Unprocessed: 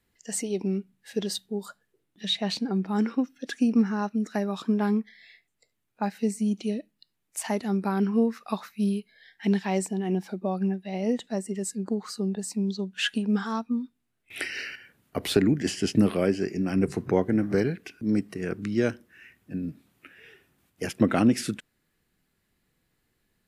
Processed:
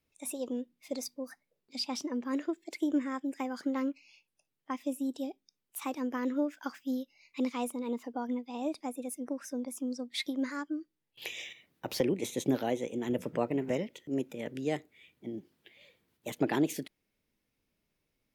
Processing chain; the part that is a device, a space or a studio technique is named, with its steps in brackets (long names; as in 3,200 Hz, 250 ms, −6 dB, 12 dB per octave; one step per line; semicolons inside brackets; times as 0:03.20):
nightcore (speed change +28%)
level −7.5 dB